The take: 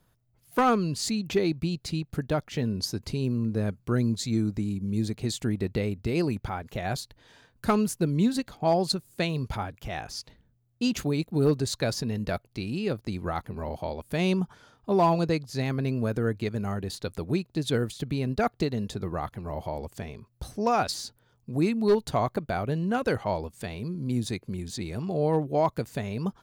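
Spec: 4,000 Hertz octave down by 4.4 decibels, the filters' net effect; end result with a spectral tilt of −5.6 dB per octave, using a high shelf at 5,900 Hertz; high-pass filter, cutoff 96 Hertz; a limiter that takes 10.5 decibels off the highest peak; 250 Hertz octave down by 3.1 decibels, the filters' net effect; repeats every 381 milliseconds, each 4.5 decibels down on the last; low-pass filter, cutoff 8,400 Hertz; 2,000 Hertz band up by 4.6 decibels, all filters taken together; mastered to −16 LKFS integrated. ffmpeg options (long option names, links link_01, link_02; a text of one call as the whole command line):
ffmpeg -i in.wav -af "highpass=96,lowpass=8400,equalizer=frequency=250:width_type=o:gain=-4,equalizer=frequency=2000:width_type=o:gain=8,equalizer=frequency=4000:width_type=o:gain=-8.5,highshelf=frequency=5900:gain=4,alimiter=limit=-20.5dB:level=0:latency=1,aecho=1:1:381|762|1143|1524|1905|2286|2667|3048|3429:0.596|0.357|0.214|0.129|0.0772|0.0463|0.0278|0.0167|0.01,volume=15dB" out.wav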